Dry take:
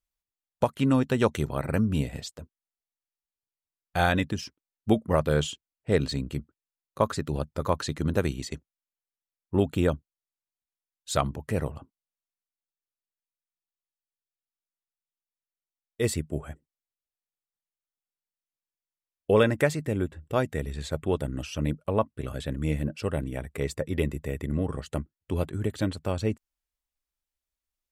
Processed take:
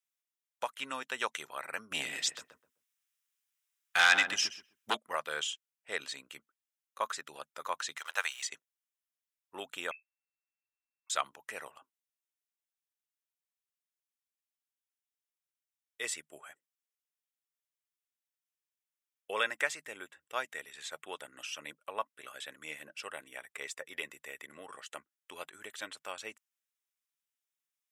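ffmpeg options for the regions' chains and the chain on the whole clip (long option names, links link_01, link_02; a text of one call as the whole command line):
ffmpeg -i in.wav -filter_complex "[0:a]asettb=1/sr,asplit=3[link_01][link_02][link_03];[link_01]atrim=end=1.914[link_04];[link_02]atrim=start=1.91:end=4.97,asetpts=PTS-STARTPTS,afade=type=in:duration=0.004:curve=qsin,afade=type=out:start_time=3.056:duration=0.004:curve=qsin,equalizer=frequency=640:width_type=o:width=0.93:gain=-9,aeval=exprs='0.251*sin(PI/2*2.24*val(0)/0.251)':channel_layout=same,asplit=2[link_05][link_06];[link_06]adelay=128,lowpass=frequency=1000:poles=1,volume=-5dB,asplit=2[link_07][link_08];[link_08]adelay=128,lowpass=frequency=1000:poles=1,volume=0.24,asplit=2[link_09][link_10];[link_10]adelay=128,lowpass=frequency=1000:poles=1,volume=0.24[link_11];[link_05][link_07][link_09][link_11]amix=inputs=4:normalize=0,atrim=end_sample=134946[link_12];[link_03]atrim=start=4.966[link_13];[link_04][link_12]acrossfade=duration=0.004:curve1=hsin:curve2=qsin[link_14];[link_14][link_13]acrossfade=duration=0.004:curve1=qsin:curve2=hsin,asettb=1/sr,asplit=3[link_15][link_16][link_17];[link_15]atrim=end=7.974[link_18];[link_16]atrim=start=7.97:end=8.47,asetpts=PTS-STARTPTS,afade=type=in:duration=0.004:curve=qsin,afade=type=out:start_time=0.496:duration=0.004:curve=qsin,highpass=frequency=680:width=0.5412,highpass=frequency=680:width=1.3066,acontrast=48,acrusher=bits=7:mix=0:aa=0.5[link_19];[link_17]atrim=start=8.466[link_20];[link_18][link_19]acrossfade=duration=0.004:curve1=hsin:curve2=qsin[link_21];[link_21][link_20]acrossfade=duration=0.004:curve1=qsin:curve2=hsin,asettb=1/sr,asplit=3[link_22][link_23][link_24];[link_22]atrim=end=9.914[link_25];[link_23]atrim=start=9.91:end=11.1,asetpts=PTS-STARTPTS,afade=type=in:duration=0.004:curve=qsin,afade=type=out:start_time=1.186:duration=0.004:curve=qsin,acompressor=threshold=-45dB:ratio=5:attack=3.2:release=140:knee=1:detection=peak,lowpass=frequency=2300:width_type=q:width=0.5098,lowpass=frequency=2300:width_type=q:width=0.6013,lowpass=frequency=2300:width_type=q:width=0.9,lowpass=frequency=2300:width_type=q:width=2.563,afreqshift=-2700[link_26];[link_24]atrim=start=11.096[link_27];[link_25][link_26]acrossfade=duration=0.004:curve1=hsin:curve2=qsin[link_28];[link_28][link_27]acrossfade=duration=0.004:curve1=qsin:curve2=hsin,highpass=1300,equalizer=frequency=4400:width=6.7:gain=-9,acrossover=split=9200[link_29][link_30];[link_30]acompressor=threshold=-59dB:ratio=4:attack=1:release=60[link_31];[link_29][link_31]amix=inputs=2:normalize=0" out.wav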